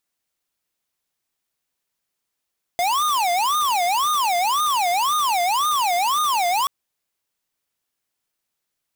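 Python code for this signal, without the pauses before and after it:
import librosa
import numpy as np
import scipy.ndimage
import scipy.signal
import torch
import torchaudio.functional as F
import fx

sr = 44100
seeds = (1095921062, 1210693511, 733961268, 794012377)

y = fx.siren(sr, length_s=3.88, kind='wail', low_hz=695.0, high_hz=1230.0, per_s=1.9, wave='square', level_db=-20.0)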